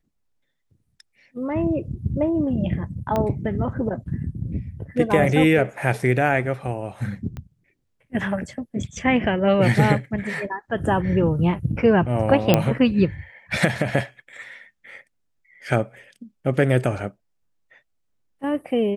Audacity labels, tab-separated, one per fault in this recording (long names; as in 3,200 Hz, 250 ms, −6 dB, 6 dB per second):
3.160000	3.160000	click −11 dBFS
7.370000	7.370000	click −22 dBFS
12.540000	12.540000	click −2 dBFS